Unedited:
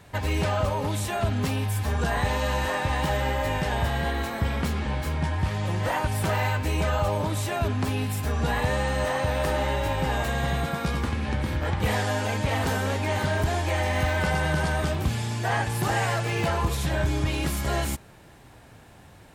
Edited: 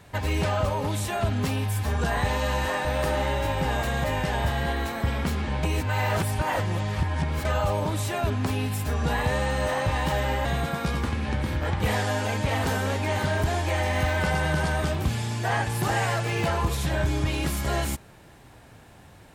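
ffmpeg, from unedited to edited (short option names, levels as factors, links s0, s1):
-filter_complex "[0:a]asplit=7[s0][s1][s2][s3][s4][s5][s6];[s0]atrim=end=2.852[s7];[s1]atrim=start=9.258:end=10.452[s8];[s2]atrim=start=3.418:end=5.012[s9];[s3]atrim=start=5.008:end=6.832,asetpts=PTS-STARTPTS,areverse[s10];[s4]atrim=start=6.828:end=9.262[s11];[s5]atrim=start=2.848:end=3.422[s12];[s6]atrim=start=10.448[s13];[s7][s8]acrossfade=d=0.004:c1=hsin:c2=hsin[s14];[s14][s9]acrossfade=d=0.004:c1=hsin:c2=hsin[s15];[s15][s10]acrossfade=d=0.004:c1=hsin:c2=hsin[s16];[s16][s11]acrossfade=d=0.004:c1=hsin:c2=hsin[s17];[s17][s12]acrossfade=d=0.004:c1=hsin:c2=hsin[s18];[s18][s13]acrossfade=d=0.004:c1=hsin:c2=hsin"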